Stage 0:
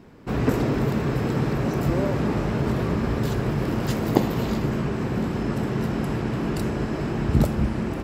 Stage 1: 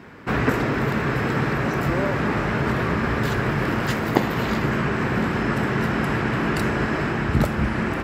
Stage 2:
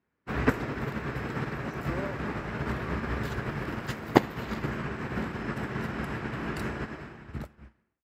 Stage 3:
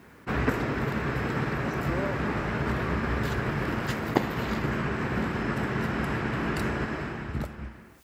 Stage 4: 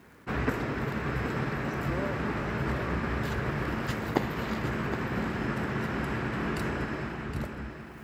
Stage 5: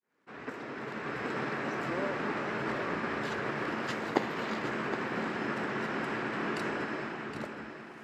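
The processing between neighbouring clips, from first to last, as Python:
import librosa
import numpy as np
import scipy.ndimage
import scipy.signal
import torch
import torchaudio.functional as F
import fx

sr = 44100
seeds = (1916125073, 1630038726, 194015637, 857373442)

y1 = scipy.signal.sosfilt(scipy.signal.butter(2, 44.0, 'highpass', fs=sr, output='sos'), x)
y1 = fx.peak_eq(y1, sr, hz=1700.0, db=11.5, octaves=1.7)
y1 = fx.rider(y1, sr, range_db=10, speed_s=0.5)
y2 = fx.fade_out_tail(y1, sr, length_s=1.33)
y2 = fx.peak_eq(y2, sr, hz=65.0, db=8.5, octaves=0.25)
y2 = fx.upward_expand(y2, sr, threshold_db=-39.0, expansion=2.5)
y3 = fx.env_flatten(y2, sr, amount_pct=50)
y3 = y3 * 10.0 ** (-4.5 / 20.0)
y4 = fx.echo_feedback(y3, sr, ms=767, feedback_pct=38, wet_db=-9.5)
y4 = fx.dmg_crackle(y4, sr, seeds[0], per_s=46.0, level_db=-47.0)
y4 = y4 * 10.0 ** (-3.0 / 20.0)
y5 = fx.fade_in_head(y4, sr, length_s=1.46)
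y5 = fx.bandpass_edges(y5, sr, low_hz=260.0, high_hz=7500.0)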